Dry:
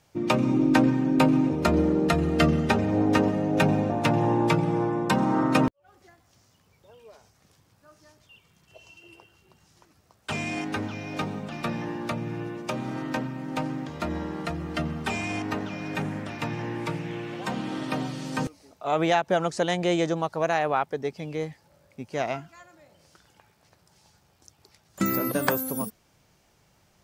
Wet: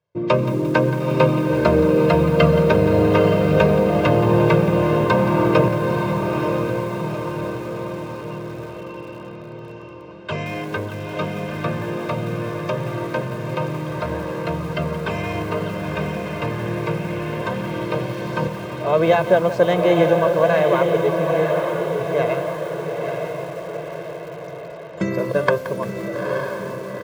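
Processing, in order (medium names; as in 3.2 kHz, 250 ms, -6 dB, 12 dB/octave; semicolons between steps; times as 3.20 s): de-hum 204.7 Hz, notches 2; gate with hold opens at -52 dBFS; band-pass 120–3600 Hz; tilt shelf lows +3.5 dB, about 910 Hz; comb 1.9 ms, depth 89%; echo that smears into a reverb 914 ms, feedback 58%, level -4 dB; bit-crushed delay 174 ms, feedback 55%, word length 6-bit, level -13.5 dB; trim +3.5 dB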